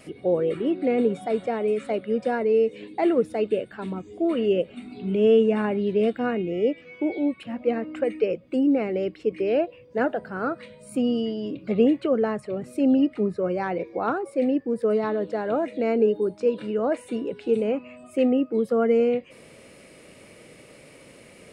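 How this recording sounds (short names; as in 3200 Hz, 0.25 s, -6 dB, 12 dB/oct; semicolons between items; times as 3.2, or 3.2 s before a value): noise floor -50 dBFS; spectral tilt -4.0 dB/oct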